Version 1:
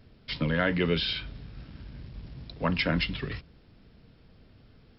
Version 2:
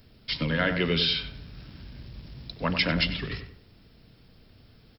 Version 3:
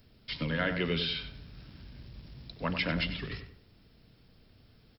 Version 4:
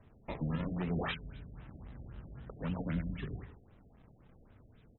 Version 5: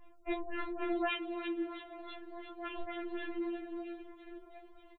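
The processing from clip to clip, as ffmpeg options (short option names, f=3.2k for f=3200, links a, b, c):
-filter_complex "[0:a]aemphasis=mode=production:type=75fm,asplit=2[a][b];[b]adelay=95,lowpass=f=1.6k:p=1,volume=-7dB,asplit=2[c][d];[d]adelay=95,lowpass=f=1.6k:p=1,volume=0.38,asplit=2[e][f];[f]adelay=95,lowpass=f=1.6k:p=1,volume=0.38,asplit=2[g][h];[h]adelay=95,lowpass=f=1.6k:p=1,volume=0.38[i];[c][e][g][i]amix=inputs=4:normalize=0[j];[a][j]amix=inputs=2:normalize=0"
-filter_complex "[0:a]acrossover=split=4000[a][b];[b]acompressor=threshold=-42dB:ratio=4:attack=1:release=60[c];[a][c]amix=inputs=2:normalize=0,volume=-5dB"
-filter_complex "[0:a]acrossover=split=270|3000[a][b][c];[b]acompressor=threshold=-46dB:ratio=4[d];[a][d][c]amix=inputs=3:normalize=0,acrusher=samples=17:mix=1:aa=0.000001:lfo=1:lforange=27.2:lforate=0.56,afftfilt=real='re*lt(b*sr/1024,710*pow(4100/710,0.5+0.5*sin(2*PI*3.8*pts/sr)))':imag='im*lt(b*sr/1024,710*pow(4100/710,0.5+0.5*sin(2*PI*3.8*pts/sr)))':win_size=1024:overlap=0.75"
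-filter_complex "[0:a]flanger=delay=20:depth=2.8:speed=2.7,asplit=9[a][b][c][d][e][f][g][h][i];[b]adelay=334,afreqshift=80,volume=-10.5dB[j];[c]adelay=668,afreqshift=160,volume=-14.5dB[k];[d]adelay=1002,afreqshift=240,volume=-18.5dB[l];[e]adelay=1336,afreqshift=320,volume=-22.5dB[m];[f]adelay=1670,afreqshift=400,volume=-26.6dB[n];[g]adelay=2004,afreqshift=480,volume=-30.6dB[o];[h]adelay=2338,afreqshift=560,volume=-34.6dB[p];[i]adelay=2672,afreqshift=640,volume=-38.6dB[q];[a][j][k][l][m][n][o][p][q]amix=inputs=9:normalize=0,afftfilt=real='re*4*eq(mod(b,16),0)':imag='im*4*eq(mod(b,16),0)':win_size=2048:overlap=0.75,volume=9.5dB"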